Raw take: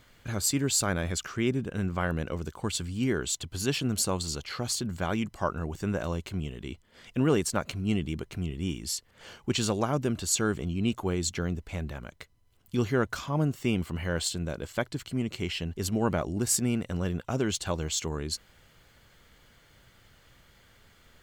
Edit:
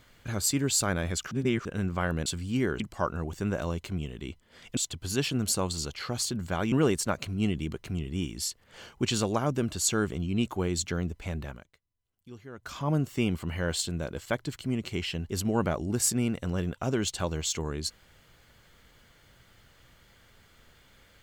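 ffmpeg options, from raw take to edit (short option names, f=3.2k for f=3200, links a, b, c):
-filter_complex "[0:a]asplit=9[a][b][c][d][e][f][g][h][i];[a]atrim=end=1.312[j];[b]atrim=start=1.308:end=1.652,asetpts=PTS-STARTPTS,areverse[k];[c]atrim=start=1.648:end=2.262[l];[d]atrim=start=2.728:end=3.272[m];[e]atrim=start=5.218:end=7.192[n];[f]atrim=start=3.268:end=5.222[o];[g]atrim=start=7.188:end=12.24,asetpts=PTS-STARTPTS,afade=t=out:st=4.782:d=0.27:c=qua:silence=0.112202[p];[h]atrim=start=12.24:end=12.98,asetpts=PTS-STARTPTS,volume=-19dB[q];[i]atrim=start=12.98,asetpts=PTS-STARTPTS,afade=t=in:d=0.27:c=qua:silence=0.112202[r];[j][k]acrossfade=d=0.004:c1=hsin:c2=hsin[s];[s][l]acrossfade=d=0.004:c1=hsin:c2=hsin[t];[t][m]acrossfade=d=0.004:c1=hsin:c2=hsin[u];[u][n]acrossfade=d=0.004:c1=hsin:c2=hsin[v];[v][o]acrossfade=d=0.004:c1=hsin:c2=hsin[w];[p][q][r]concat=n=3:v=0:a=1[x];[w][x]acrossfade=d=0.004:c1=hsin:c2=hsin"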